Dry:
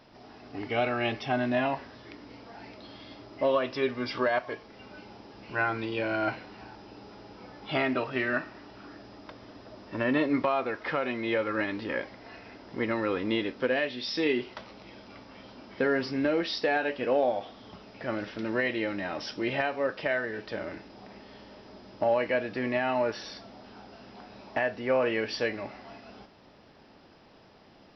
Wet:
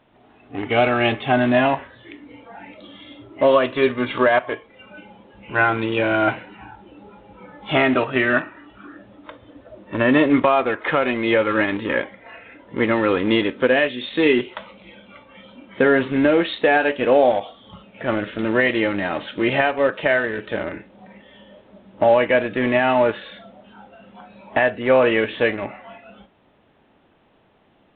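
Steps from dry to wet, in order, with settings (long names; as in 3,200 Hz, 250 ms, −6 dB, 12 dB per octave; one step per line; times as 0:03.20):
noise reduction from a noise print of the clip's start 11 dB
in parallel at −12 dB: bit reduction 5 bits
on the sum: level +8.5 dB
mu-law 64 kbit/s 8,000 Hz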